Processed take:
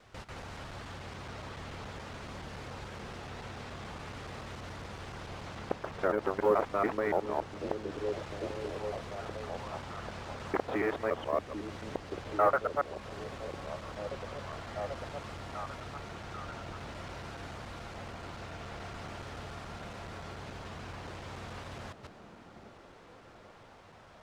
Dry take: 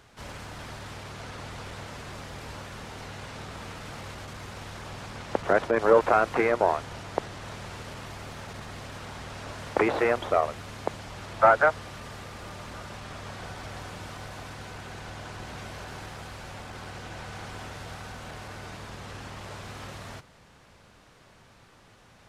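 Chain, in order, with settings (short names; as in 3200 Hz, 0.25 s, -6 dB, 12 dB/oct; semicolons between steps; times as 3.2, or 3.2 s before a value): local time reversal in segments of 0.131 s; high shelf 9400 Hz -9.5 dB; in parallel at +0.5 dB: compressor, threshold -38 dBFS, peak gain reduction 22 dB; on the sum: companded quantiser 8-bit; on a send: delay with a stepping band-pass 0.727 s, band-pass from 250 Hz, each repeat 0.7 oct, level -4 dB; on the sum: varispeed -8%; gain -8.5 dB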